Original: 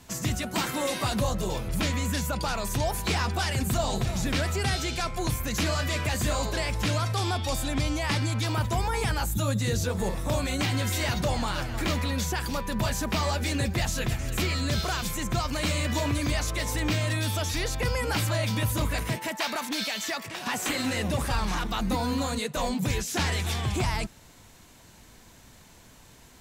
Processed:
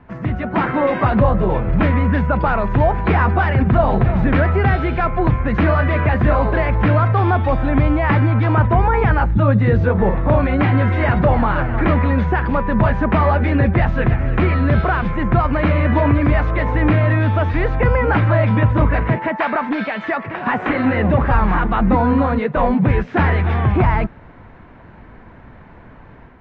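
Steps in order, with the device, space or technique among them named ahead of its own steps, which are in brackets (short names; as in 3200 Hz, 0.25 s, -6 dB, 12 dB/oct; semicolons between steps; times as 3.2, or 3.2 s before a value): action camera in a waterproof case (LPF 1900 Hz 24 dB/oct; AGC gain up to 6 dB; gain +7 dB; AAC 64 kbps 48000 Hz)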